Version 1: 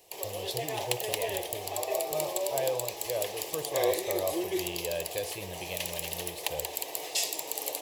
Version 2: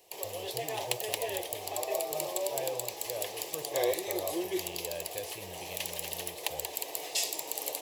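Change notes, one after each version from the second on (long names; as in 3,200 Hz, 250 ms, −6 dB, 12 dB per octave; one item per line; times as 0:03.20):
speech −6.0 dB
background: send off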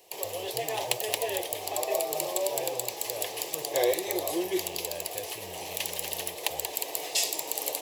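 background +4.0 dB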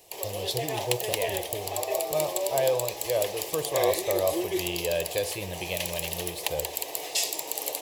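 speech +12.0 dB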